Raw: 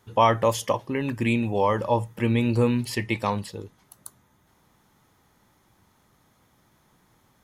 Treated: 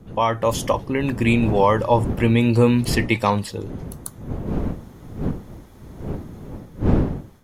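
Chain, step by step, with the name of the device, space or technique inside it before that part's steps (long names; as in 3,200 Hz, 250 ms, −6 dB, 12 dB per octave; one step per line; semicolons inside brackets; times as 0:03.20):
smartphone video outdoors (wind on the microphone 230 Hz −34 dBFS; automatic gain control gain up to 11.5 dB; level −2 dB; AAC 96 kbit/s 44,100 Hz)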